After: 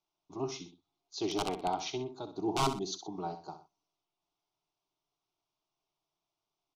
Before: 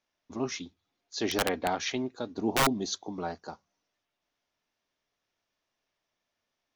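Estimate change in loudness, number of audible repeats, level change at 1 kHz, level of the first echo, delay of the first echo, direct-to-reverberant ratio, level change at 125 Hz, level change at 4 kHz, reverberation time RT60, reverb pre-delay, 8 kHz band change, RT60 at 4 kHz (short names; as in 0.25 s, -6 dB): -5.0 dB, 2, -2.0 dB, -10.5 dB, 64 ms, none, -2.0 dB, -5.5 dB, none, none, -6.5 dB, none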